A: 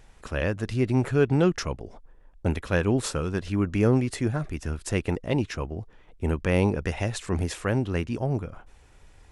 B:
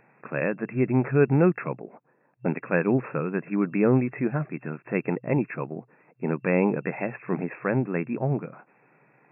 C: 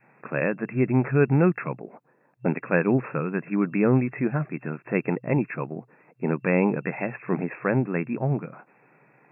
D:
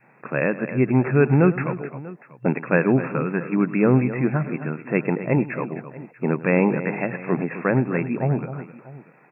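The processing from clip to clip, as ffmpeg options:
-af "afftfilt=real='re*between(b*sr/4096,120,2700)':imag='im*between(b*sr/4096,120,2700)':win_size=4096:overlap=0.75,volume=1.19"
-af "adynamicequalizer=threshold=0.02:dfrequency=460:dqfactor=0.8:tfrequency=460:tqfactor=0.8:attack=5:release=100:ratio=0.375:range=2:mode=cutabove:tftype=bell,volume=1.26"
-af "aecho=1:1:103|259|640:0.141|0.237|0.106,volume=1.41"

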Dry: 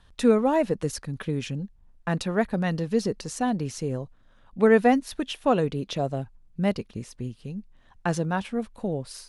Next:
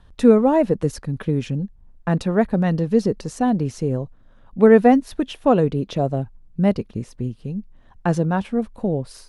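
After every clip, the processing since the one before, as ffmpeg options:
-af "tiltshelf=f=1200:g=5,volume=1.33"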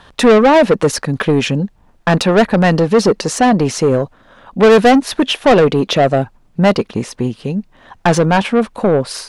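-filter_complex "[0:a]asplit=2[s0][s1];[s1]highpass=f=720:p=1,volume=20,asoftclip=type=tanh:threshold=0.891[s2];[s0][s2]amix=inputs=2:normalize=0,lowpass=f=5900:p=1,volume=0.501"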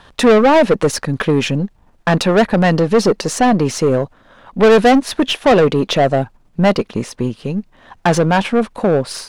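-af "aeval=exprs='if(lt(val(0),0),0.708*val(0),val(0))':c=same"

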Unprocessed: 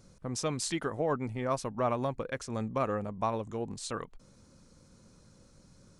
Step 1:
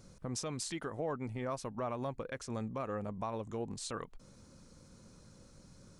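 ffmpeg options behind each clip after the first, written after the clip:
-af "alimiter=level_in=1.78:limit=0.0631:level=0:latency=1:release=342,volume=0.562,volume=1.12"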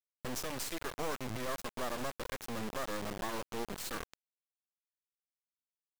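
-af "acrusher=bits=4:dc=4:mix=0:aa=0.000001,volume=1.5"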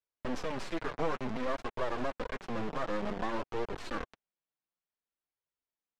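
-filter_complex "[0:a]flanger=delay=1.8:depth=5:regen=-23:speed=0.55:shape=triangular,acrossover=split=530|1100[s0][s1][s2];[s2]adynamicsmooth=sensitivity=2.5:basefreq=2900[s3];[s0][s1][s3]amix=inputs=3:normalize=0,volume=2.51"

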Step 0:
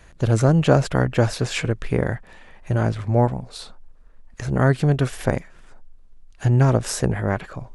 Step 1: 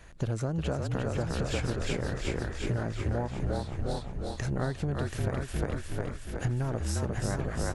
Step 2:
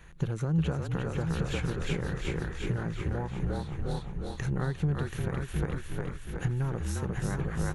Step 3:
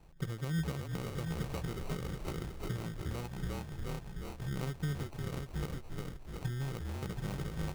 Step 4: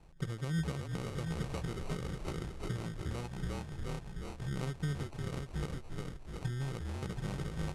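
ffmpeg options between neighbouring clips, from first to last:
-filter_complex "[0:a]asplit=2[s0][s1];[s1]asplit=5[s2][s3][s4][s5][s6];[s2]adelay=354,afreqshift=-44,volume=0.668[s7];[s3]adelay=708,afreqshift=-88,volume=0.282[s8];[s4]adelay=1062,afreqshift=-132,volume=0.117[s9];[s5]adelay=1416,afreqshift=-176,volume=0.0495[s10];[s6]adelay=1770,afreqshift=-220,volume=0.0209[s11];[s7][s8][s9][s10][s11]amix=inputs=5:normalize=0[s12];[s0][s12]amix=inputs=2:normalize=0,acompressor=threshold=0.0631:ratio=10,asplit=2[s13][s14];[s14]aecho=0:1:730|1460|2190:0.501|0.11|0.0243[s15];[s13][s15]amix=inputs=2:normalize=0,volume=0.708"
-af "equalizer=f=100:t=o:w=0.33:g=-6,equalizer=f=160:t=o:w=0.33:g=8,equalizer=f=250:t=o:w=0.33:g=-6,equalizer=f=630:t=o:w=0.33:g=-11,equalizer=f=5000:t=o:w=0.33:g=-10,equalizer=f=8000:t=o:w=0.33:g=-7"
-af "acrusher=samples=26:mix=1:aa=0.000001,volume=0.447"
-af "lowpass=f=11000:w=0.5412,lowpass=f=11000:w=1.3066"

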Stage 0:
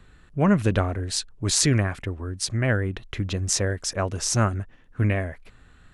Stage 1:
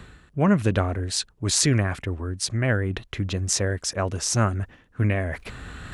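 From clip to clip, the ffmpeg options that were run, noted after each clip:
-af "highpass=44,areverse,acompressor=mode=upward:threshold=0.0708:ratio=2.5,areverse"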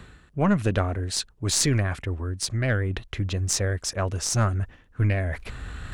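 -af "asubboost=boost=2:cutoff=110,aeval=exprs='0.794*(cos(1*acos(clip(val(0)/0.794,-1,1)))-cos(1*PI/2))+0.0562*(cos(4*acos(clip(val(0)/0.794,-1,1)))-cos(4*PI/2))+0.0708*(cos(6*acos(clip(val(0)/0.794,-1,1)))-cos(6*PI/2))':c=same,volume=0.841"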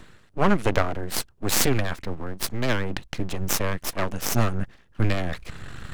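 -af "aeval=exprs='0.631*(cos(1*acos(clip(val(0)/0.631,-1,1)))-cos(1*PI/2))+0.141*(cos(6*acos(clip(val(0)/0.631,-1,1)))-cos(6*PI/2))':c=same,aeval=exprs='abs(val(0))':c=same"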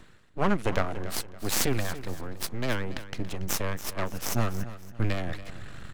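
-af "aecho=1:1:282|564|846:0.188|0.064|0.0218,volume=0.562"

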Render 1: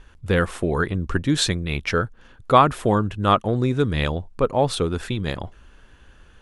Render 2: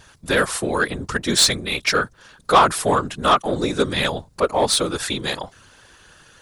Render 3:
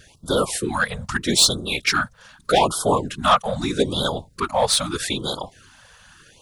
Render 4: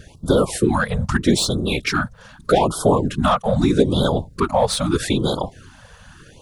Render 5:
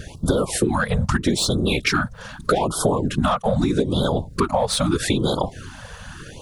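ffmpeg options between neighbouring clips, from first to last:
-filter_complex "[0:a]aexciter=amount=4.4:drive=2.4:freq=4000,afftfilt=real='hypot(re,im)*cos(2*PI*random(0))':imag='hypot(re,im)*sin(2*PI*random(1))':win_size=512:overlap=0.75,asplit=2[s0][s1];[s1]highpass=f=720:p=1,volume=6.31,asoftclip=type=tanh:threshold=0.501[s2];[s0][s2]amix=inputs=2:normalize=0,lowpass=f=5700:p=1,volume=0.501,volume=1.26"
-af "afftfilt=real='re*(1-between(b*sr/1024,300*pow(2200/300,0.5+0.5*sin(2*PI*0.8*pts/sr))/1.41,300*pow(2200/300,0.5+0.5*sin(2*PI*0.8*pts/sr))*1.41))':imag='im*(1-between(b*sr/1024,300*pow(2200/300,0.5+0.5*sin(2*PI*0.8*pts/sr))/1.41,300*pow(2200/300,0.5+0.5*sin(2*PI*0.8*pts/sr))*1.41))':win_size=1024:overlap=0.75"
-af "acompressor=threshold=0.0794:ratio=2.5,tiltshelf=f=840:g=6,volume=1.88"
-af "acompressor=threshold=0.0631:ratio=6,volume=2.24"

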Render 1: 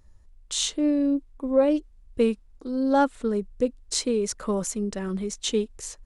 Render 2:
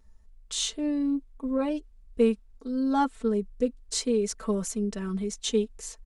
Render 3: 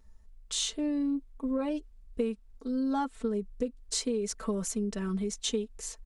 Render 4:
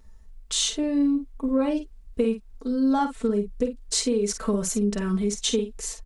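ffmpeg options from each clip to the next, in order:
-af "aecho=1:1:4.5:0.89,volume=0.531"
-af "acompressor=threshold=0.0447:ratio=6"
-filter_complex "[0:a]asplit=2[s0][s1];[s1]adelay=49,volume=0.376[s2];[s0][s2]amix=inputs=2:normalize=0,volume=2.11"

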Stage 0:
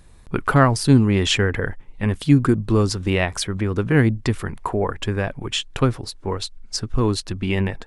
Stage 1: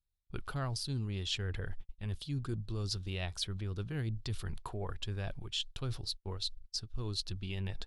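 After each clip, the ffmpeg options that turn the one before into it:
-af "agate=range=0.0141:threshold=0.02:ratio=16:detection=peak,equalizer=f=125:t=o:w=1:g=-3,equalizer=f=250:t=o:w=1:g=-12,equalizer=f=500:t=o:w=1:g=-8,equalizer=f=1000:t=o:w=1:g=-9,equalizer=f=2000:t=o:w=1:g=-12,equalizer=f=4000:t=o:w=1:g=7,equalizer=f=8000:t=o:w=1:g=-7,areverse,acompressor=threshold=0.0178:ratio=5,areverse"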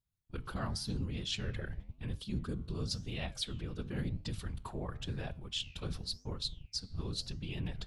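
-af "afftfilt=real='hypot(re,im)*cos(2*PI*random(0))':imag='hypot(re,im)*sin(2*PI*random(1))':win_size=512:overlap=0.75,flanger=delay=8.2:depth=9:regen=-88:speed=0.94:shape=sinusoidal,volume=2.99"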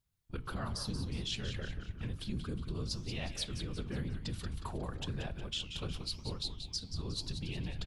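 -filter_complex "[0:a]acompressor=threshold=0.00794:ratio=2.5,asplit=2[s0][s1];[s1]asplit=5[s2][s3][s4][s5][s6];[s2]adelay=181,afreqshift=-100,volume=0.376[s7];[s3]adelay=362,afreqshift=-200,volume=0.176[s8];[s4]adelay=543,afreqshift=-300,volume=0.0832[s9];[s5]adelay=724,afreqshift=-400,volume=0.0389[s10];[s6]adelay=905,afreqshift=-500,volume=0.0184[s11];[s7][s8][s9][s10][s11]amix=inputs=5:normalize=0[s12];[s0][s12]amix=inputs=2:normalize=0,volume=1.68"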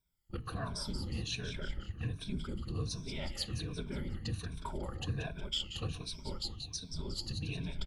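-af "afftfilt=real='re*pow(10,14/40*sin(2*PI*(1.6*log(max(b,1)*sr/1024/100)/log(2)-(-1.3)*(pts-256)/sr)))':imag='im*pow(10,14/40*sin(2*PI*(1.6*log(max(b,1)*sr/1024/100)/log(2)-(-1.3)*(pts-256)/sr)))':win_size=1024:overlap=0.75,aeval=exprs='0.0891*(cos(1*acos(clip(val(0)/0.0891,-1,1)))-cos(1*PI/2))+0.00355*(cos(3*acos(clip(val(0)/0.0891,-1,1)))-cos(3*PI/2))':c=same,volume=0.891"

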